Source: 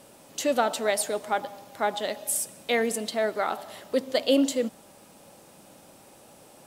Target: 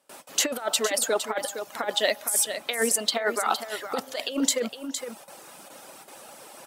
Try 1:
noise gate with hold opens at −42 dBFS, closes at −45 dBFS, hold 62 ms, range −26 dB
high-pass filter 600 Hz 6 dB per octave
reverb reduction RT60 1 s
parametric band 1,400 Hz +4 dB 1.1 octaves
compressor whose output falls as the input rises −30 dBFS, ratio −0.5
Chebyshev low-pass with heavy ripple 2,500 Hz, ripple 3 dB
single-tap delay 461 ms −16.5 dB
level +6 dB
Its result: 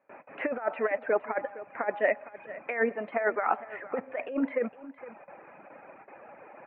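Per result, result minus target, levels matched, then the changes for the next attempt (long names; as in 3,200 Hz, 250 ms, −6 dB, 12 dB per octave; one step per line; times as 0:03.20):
echo-to-direct −7.5 dB; 2,000 Hz band +3.0 dB
change: single-tap delay 461 ms −9 dB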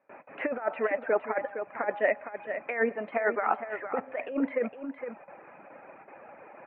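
2,000 Hz band +3.5 dB
remove: Chebyshev low-pass with heavy ripple 2,500 Hz, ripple 3 dB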